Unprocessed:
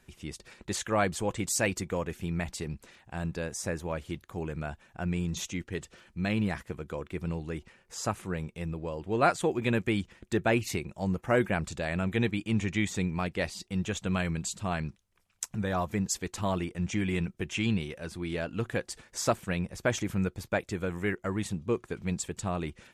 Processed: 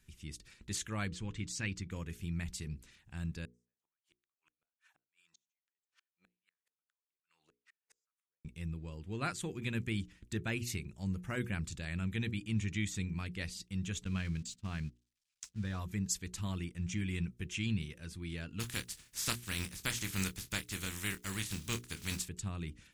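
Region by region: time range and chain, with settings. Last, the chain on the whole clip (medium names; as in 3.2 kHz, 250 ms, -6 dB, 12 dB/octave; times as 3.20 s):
1.08–1.91 s: low-pass 4.6 kHz + peaking EQ 610 Hz -8 dB
3.45–8.45 s: compression 2.5:1, threshold -53 dBFS + LFO high-pass sine 2.4 Hz 560–1500 Hz + inverted gate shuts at -45 dBFS, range -38 dB
14.04–15.79 s: zero-crossing glitches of -32.5 dBFS + gate -36 dBFS, range -30 dB + distance through air 110 m
18.59–22.27 s: spectral contrast reduction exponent 0.44 + doubling 26 ms -10.5 dB
whole clip: amplifier tone stack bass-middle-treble 6-0-2; hum notches 60/120/180/240/300/360/420/480 Hz; trim +11 dB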